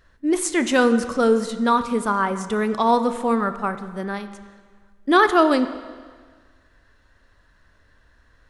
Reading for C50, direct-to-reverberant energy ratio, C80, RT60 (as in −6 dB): 11.5 dB, 10.5 dB, 13.0 dB, 1.6 s